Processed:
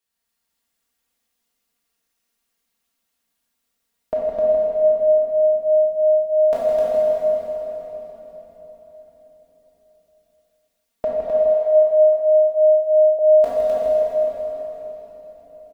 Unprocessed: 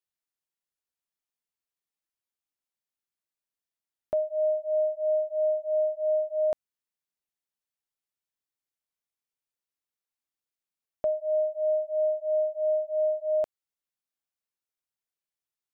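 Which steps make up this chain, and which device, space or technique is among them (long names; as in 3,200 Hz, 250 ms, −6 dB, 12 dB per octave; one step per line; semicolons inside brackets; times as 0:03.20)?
peak hold with a decay on every bin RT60 0.33 s
cave (single-tap delay 161 ms −8.5 dB; convolution reverb RT60 4.5 s, pre-delay 25 ms, DRR −4 dB)
comb filter 4.3 ms, depth 74%
0:11.28–0:13.19: low shelf with overshoot 420 Hz −10.5 dB, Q 1.5
loudspeakers that aren't time-aligned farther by 12 metres −11 dB, 88 metres −3 dB
level +6 dB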